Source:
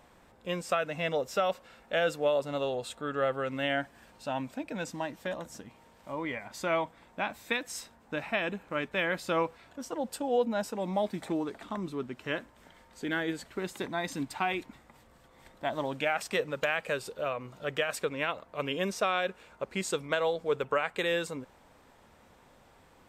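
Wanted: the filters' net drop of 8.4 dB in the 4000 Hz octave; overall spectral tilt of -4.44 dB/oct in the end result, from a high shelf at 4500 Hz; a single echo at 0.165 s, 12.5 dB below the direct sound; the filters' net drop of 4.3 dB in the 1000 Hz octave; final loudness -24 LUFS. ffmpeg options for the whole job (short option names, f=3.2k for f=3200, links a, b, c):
-af "equalizer=f=1k:t=o:g=-5.5,equalizer=f=4k:t=o:g=-9,highshelf=f=4.5k:g=-5,aecho=1:1:165:0.237,volume=11dB"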